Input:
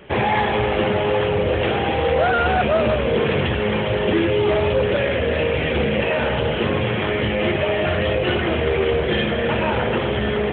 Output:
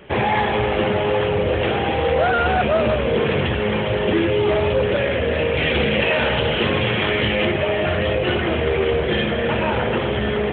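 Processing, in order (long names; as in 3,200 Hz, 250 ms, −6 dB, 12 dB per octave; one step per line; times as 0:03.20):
0:05.57–0:07.45: high-shelf EQ 2,400 Hz +9.5 dB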